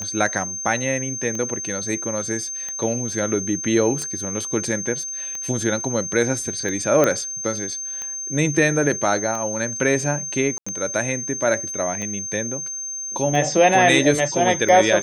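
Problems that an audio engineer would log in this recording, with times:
scratch tick 45 rpm −17 dBFS
whistle 6,300 Hz −27 dBFS
0:07.04: click −5 dBFS
0:10.58–0:10.66: drop-out 85 ms

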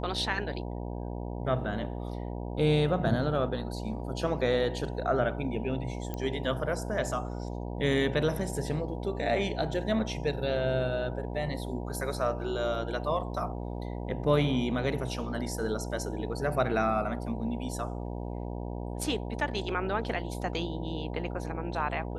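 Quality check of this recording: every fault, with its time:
mains buzz 60 Hz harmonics 16 −36 dBFS
0:06.14: click −21 dBFS

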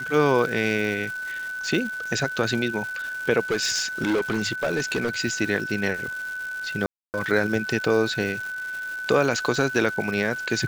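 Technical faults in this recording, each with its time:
surface crackle 460 per second −32 dBFS
whistle 1,500 Hz −29 dBFS
0:03.51–0:05.10: clipping −19 dBFS
0:06.86–0:07.14: drop-out 279 ms

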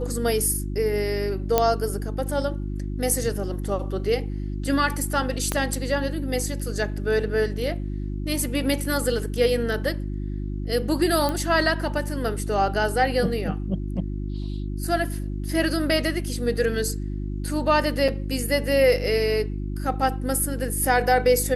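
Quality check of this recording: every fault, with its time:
mains hum 50 Hz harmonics 7 −29 dBFS
0:01.58: click −4 dBFS
0:05.52: click −8 dBFS
0:11.29: click −12 dBFS
0:18.08: drop-out 4.6 ms

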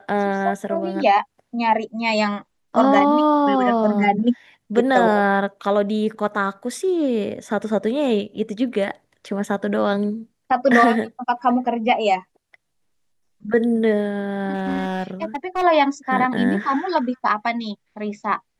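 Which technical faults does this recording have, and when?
0:14.54–0:15.64: clipping −18 dBFS

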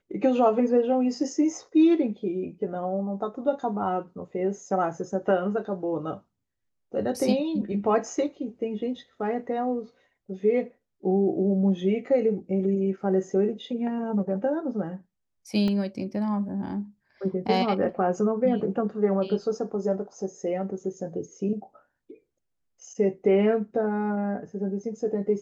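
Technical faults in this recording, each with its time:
0:15.68: drop-out 2.1 ms

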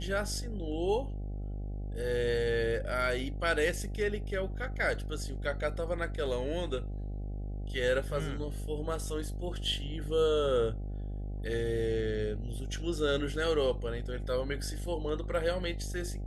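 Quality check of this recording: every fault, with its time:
mains buzz 50 Hz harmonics 16 −37 dBFS

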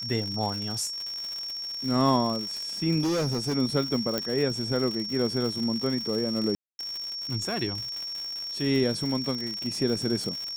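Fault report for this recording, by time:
surface crackle 160 per second −31 dBFS
whistle 5,500 Hz −32 dBFS
0:03.00–0:03.56: clipping −23 dBFS
0:04.18: click −12 dBFS
0:06.55–0:06.79: drop-out 241 ms

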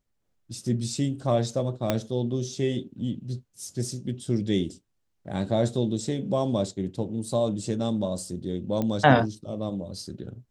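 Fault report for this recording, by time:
0:01.90: click −9 dBFS
0:08.82: click −16 dBFS

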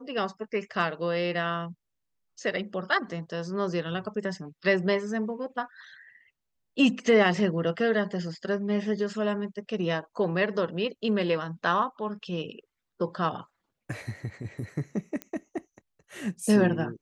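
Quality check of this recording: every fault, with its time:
0:15.22: click −20 dBFS

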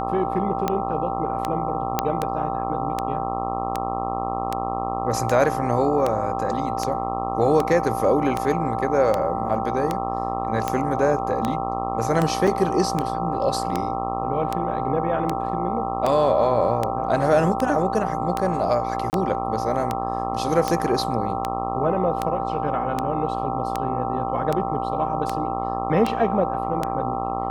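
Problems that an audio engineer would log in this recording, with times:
mains buzz 60 Hz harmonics 22 −29 dBFS
scratch tick 78 rpm −9 dBFS
whistle 780 Hz −28 dBFS
0:01.99: click −5 dBFS
0:12.47–0:12.48: drop-out 5.6 ms
0:19.10–0:19.13: drop-out 29 ms

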